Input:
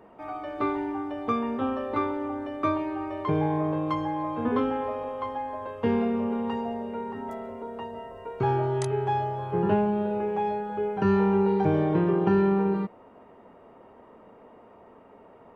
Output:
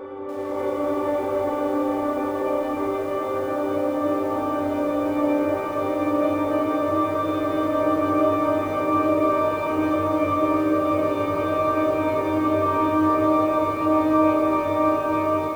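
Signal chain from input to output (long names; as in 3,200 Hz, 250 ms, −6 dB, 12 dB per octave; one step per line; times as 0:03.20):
turntable start at the beginning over 2.07 s
extreme stretch with random phases 29×, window 1.00 s, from 0:02.26
automatic gain control gain up to 12 dB
parametric band 500 Hz +14 dB 0.4 octaves
echo with a time of its own for lows and highs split 550 Hz, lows 473 ms, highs 179 ms, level −13 dB
feedback echo at a low word length 289 ms, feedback 55%, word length 6 bits, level −7 dB
level −8 dB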